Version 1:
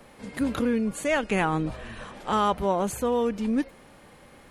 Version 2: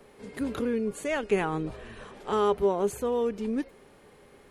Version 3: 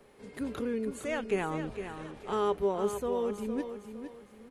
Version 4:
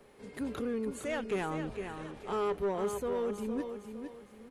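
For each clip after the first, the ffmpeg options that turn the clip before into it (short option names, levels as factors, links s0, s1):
-af "equalizer=f=410:w=6.3:g=14.5,volume=0.531"
-af "aecho=1:1:459|918|1377|1836:0.355|0.117|0.0386|0.0128,volume=0.596"
-af "asoftclip=type=tanh:threshold=0.0501"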